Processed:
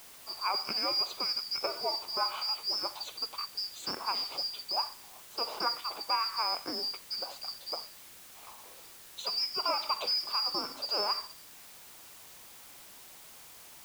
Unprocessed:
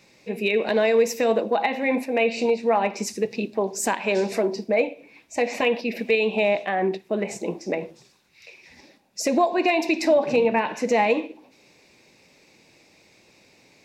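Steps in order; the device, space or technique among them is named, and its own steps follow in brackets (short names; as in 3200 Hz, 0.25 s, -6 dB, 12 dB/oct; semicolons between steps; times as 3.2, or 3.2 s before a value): split-band scrambled radio (four-band scrambler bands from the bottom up 2341; BPF 310–3300 Hz; white noise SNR 16 dB); gain -5 dB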